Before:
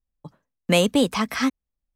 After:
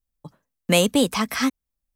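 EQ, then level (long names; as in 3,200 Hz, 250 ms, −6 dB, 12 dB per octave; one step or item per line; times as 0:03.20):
high-shelf EQ 7,100 Hz +9 dB
0.0 dB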